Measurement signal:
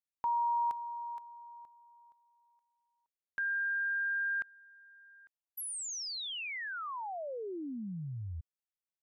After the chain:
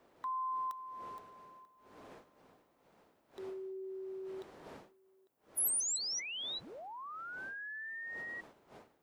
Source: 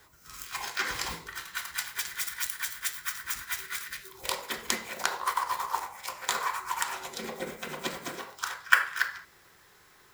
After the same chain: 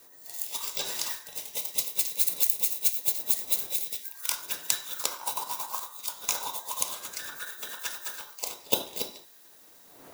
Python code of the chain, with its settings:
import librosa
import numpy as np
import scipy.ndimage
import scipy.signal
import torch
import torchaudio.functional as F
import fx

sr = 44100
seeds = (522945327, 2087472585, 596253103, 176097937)

y = fx.band_invert(x, sr, width_hz=2000)
y = fx.dmg_wind(y, sr, seeds[0], corner_hz=510.0, level_db=-49.0)
y = fx.riaa(y, sr, side='recording')
y = y * librosa.db_to_amplitude(-6.5)